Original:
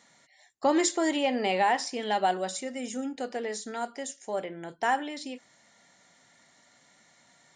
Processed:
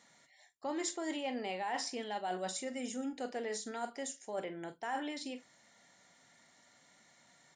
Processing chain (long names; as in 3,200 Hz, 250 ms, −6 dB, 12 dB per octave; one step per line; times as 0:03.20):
double-tracking delay 44 ms −13 dB
reversed playback
downward compressor 12 to 1, threshold −30 dBFS, peak gain reduction 11.5 dB
reversed playback
level −4 dB